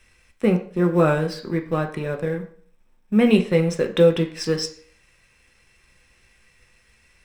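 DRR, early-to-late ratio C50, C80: 3.5 dB, 11.5 dB, 15.5 dB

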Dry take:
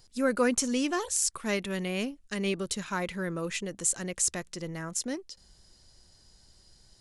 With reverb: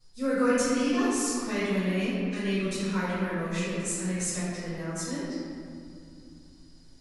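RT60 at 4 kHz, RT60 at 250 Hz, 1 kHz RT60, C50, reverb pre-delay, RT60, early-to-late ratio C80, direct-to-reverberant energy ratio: 1.3 s, 3.9 s, 2.3 s, −4.0 dB, 3 ms, 2.5 s, −2.0 dB, −18.0 dB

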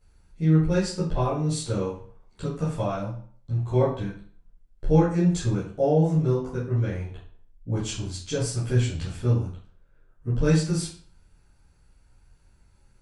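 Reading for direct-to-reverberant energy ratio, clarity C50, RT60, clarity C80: −11.0 dB, 4.5 dB, 0.45 s, 9.5 dB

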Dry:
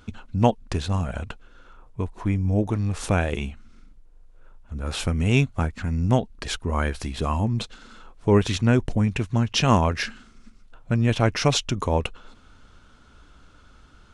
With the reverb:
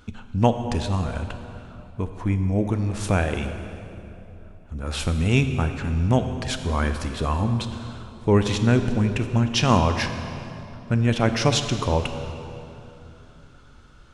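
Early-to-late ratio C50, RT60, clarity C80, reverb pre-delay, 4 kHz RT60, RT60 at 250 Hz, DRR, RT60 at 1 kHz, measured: 8.0 dB, 2.9 s, 8.5 dB, 26 ms, 2.2 s, 3.6 s, 7.5 dB, 2.8 s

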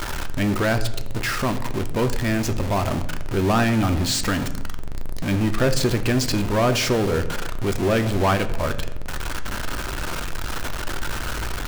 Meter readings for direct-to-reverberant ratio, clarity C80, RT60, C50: 7.0 dB, 15.5 dB, 0.95 s, 13.0 dB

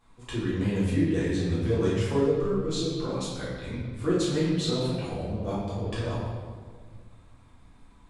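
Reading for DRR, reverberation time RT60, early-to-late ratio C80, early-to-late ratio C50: −10.0 dB, 1.7 s, 2.0 dB, −1.0 dB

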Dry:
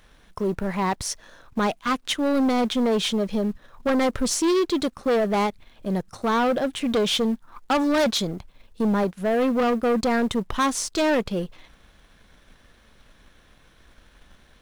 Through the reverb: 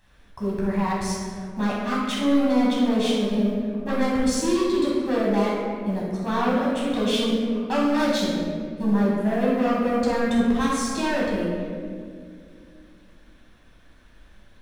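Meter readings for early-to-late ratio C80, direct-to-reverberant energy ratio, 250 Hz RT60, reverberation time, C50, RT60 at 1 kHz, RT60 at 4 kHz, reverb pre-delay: 1.5 dB, −6.5 dB, 3.2 s, 2.2 s, −1.0 dB, 1.8 s, 1.2 s, 10 ms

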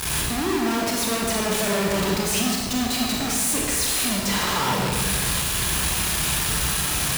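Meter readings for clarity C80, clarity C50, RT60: 2.5 dB, 0.0 dB, 1.3 s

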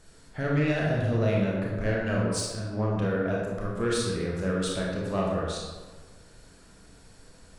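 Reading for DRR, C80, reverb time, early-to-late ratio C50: −4.0 dB, 2.0 dB, 1.4 s, −0.5 dB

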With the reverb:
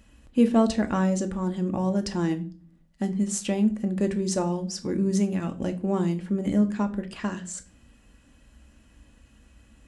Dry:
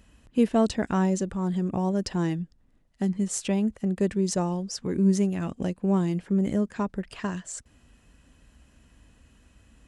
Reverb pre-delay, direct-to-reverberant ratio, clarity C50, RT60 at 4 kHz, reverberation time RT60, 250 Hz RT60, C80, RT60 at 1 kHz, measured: 4 ms, 6.5 dB, 15.5 dB, 0.30 s, 0.40 s, 0.60 s, 21.0 dB, 0.35 s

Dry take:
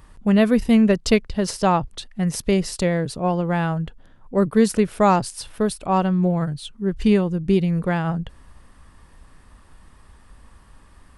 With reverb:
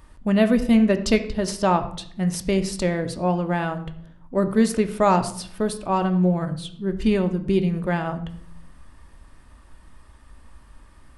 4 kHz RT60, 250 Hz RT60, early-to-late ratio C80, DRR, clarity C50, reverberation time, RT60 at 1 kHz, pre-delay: 0.45 s, 1.0 s, 15.0 dB, 7.0 dB, 12.5 dB, 0.65 s, 0.60 s, 3 ms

